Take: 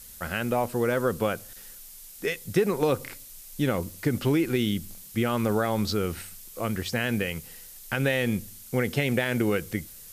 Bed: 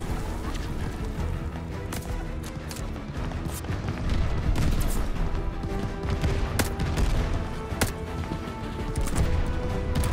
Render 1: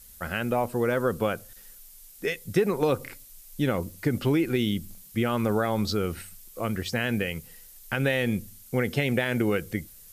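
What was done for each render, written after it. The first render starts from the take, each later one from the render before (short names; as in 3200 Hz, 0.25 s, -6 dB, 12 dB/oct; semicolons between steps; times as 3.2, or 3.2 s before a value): denoiser 6 dB, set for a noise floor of -46 dBFS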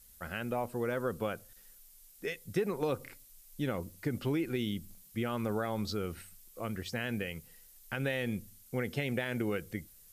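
gain -8.5 dB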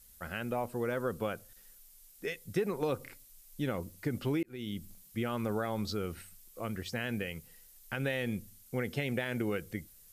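4.43–4.83 fade in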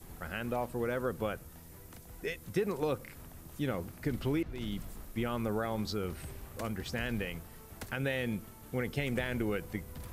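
add bed -20 dB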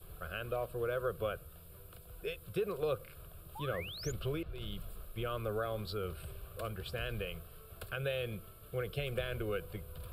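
fixed phaser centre 1300 Hz, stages 8; 3.55–4.12 painted sound rise 790–7300 Hz -46 dBFS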